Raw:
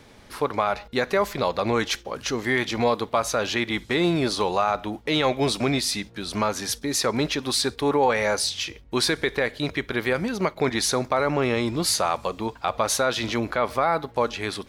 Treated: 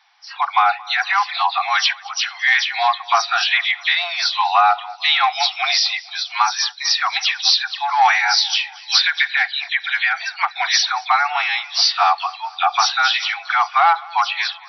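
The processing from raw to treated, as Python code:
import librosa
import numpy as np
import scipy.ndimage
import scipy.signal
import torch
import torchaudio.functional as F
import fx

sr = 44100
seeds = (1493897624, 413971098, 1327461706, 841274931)

p1 = fx.spec_delay(x, sr, highs='early', ms=127)
p2 = fx.noise_reduce_blind(p1, sr, reduce_db=14)
p3 = 10.0 ** (-16.5 / 20.0) * (np.abs((p2 / 10.0 ** (-16.5 / 20.0) + 3.0) % 4.0 - 2.0) - 1.0)
p4 = p2 + (p3 * librosa.db_to_amplitude(-7.0))
p5 = fx.brickwall_bandpass(p4, sr, low_hz=690.0, high_hz=5900.0)
p6 = p5 + fx.echo_feedback(p5, sr, ms=225, feedback_pct=60, wet_db=-23, dry=0)
y = p6 * librosa.db_to_amplitude(8.0)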